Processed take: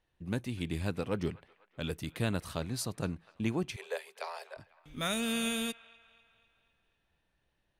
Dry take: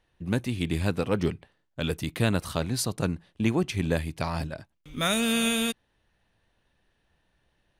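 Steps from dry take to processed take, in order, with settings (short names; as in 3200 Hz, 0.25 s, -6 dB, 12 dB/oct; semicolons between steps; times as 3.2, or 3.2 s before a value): 3.76–4.57 Chebyshev high-pass 390 Hz, order 10; band-limited delay 0.249 s, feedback 53%, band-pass 1500 Hz, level -19 dB; gain -7.5 dB; Vorbis 128 kbps 44100 Hz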